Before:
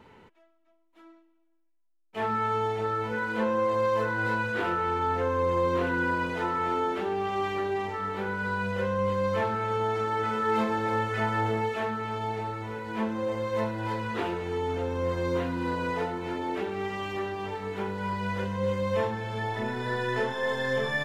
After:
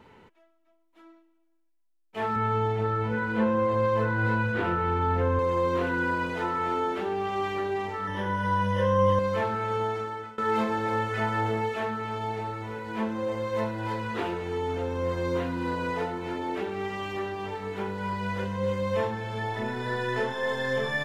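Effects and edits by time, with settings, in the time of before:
0:02.36–0:05.39: bass and treble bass +9 dB, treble −7 dB
0:08.07–0:09.19: EQ curve with evenly spaced ripples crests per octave 1.2, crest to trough 15 dB
0:09.81–0:10.38: fade out, to −22.5 dB

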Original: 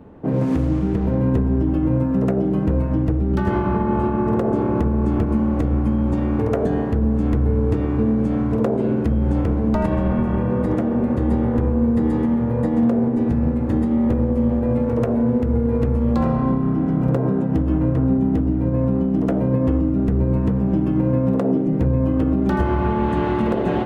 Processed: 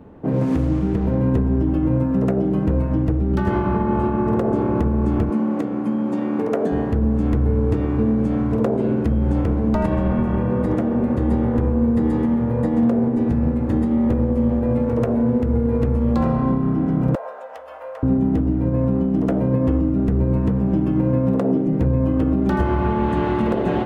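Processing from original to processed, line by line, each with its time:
0:05.30–0:06.72: high-pass filter 180 Hz 24 dB per octave
0:17.15–0:18.03: elliptic high-pass filter 540 Hz

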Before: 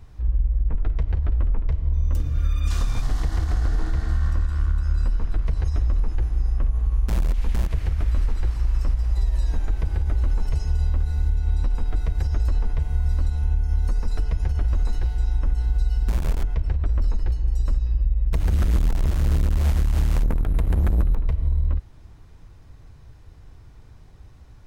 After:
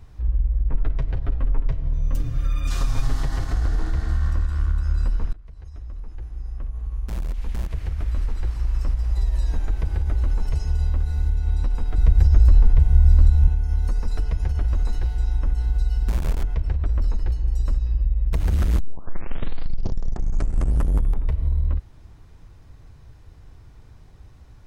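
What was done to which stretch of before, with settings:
0:00.71–0:03.53: comb filter 7.4 ms
0:05.33–0:09.27: fade in, from −23 dB
0:11.98–0:13.48: low-shelf EQ 190 Hz +9 dB
0:18.80: tape start 2.58 s

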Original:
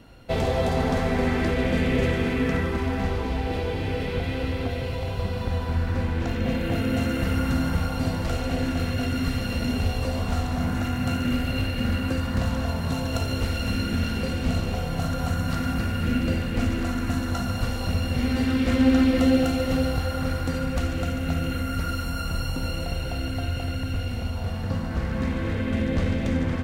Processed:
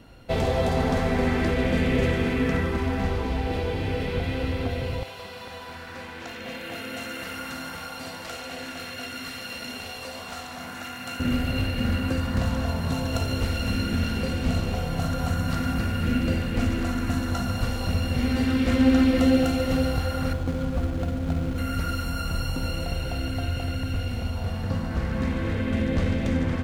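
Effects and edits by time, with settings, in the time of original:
0:05.03–0:11.20: high-pass filter 1,200 Hz 6 dB per octave
0:20.33–0:21.58: running median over 25 samples

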